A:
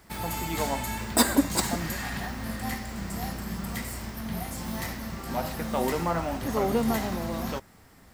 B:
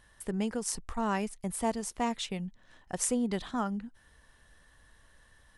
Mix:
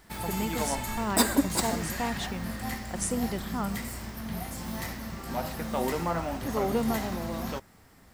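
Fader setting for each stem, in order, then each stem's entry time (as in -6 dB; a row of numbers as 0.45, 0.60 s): -2.0, -1.0 dB; 0.00, 0.00 s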